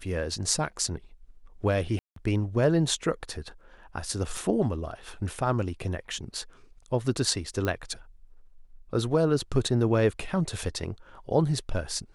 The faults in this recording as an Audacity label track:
1.990000	2.160000	drop-out 173 ms
4.370000	4.370000	drop-out 2.2 ms
7.650000	7.650000	click −16 dBFS

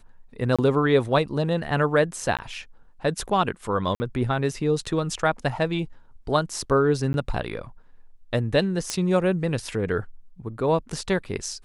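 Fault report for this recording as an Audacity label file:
0.560000	0.590000	drop-out 26 ms
2.370000	2.390000	drop-out 17 ms
3.950000	4.000000	drop-out 50 ms
7.130000	7.140000	drop-out 11 ms
8.900000	8.900000	click −11 dBFS

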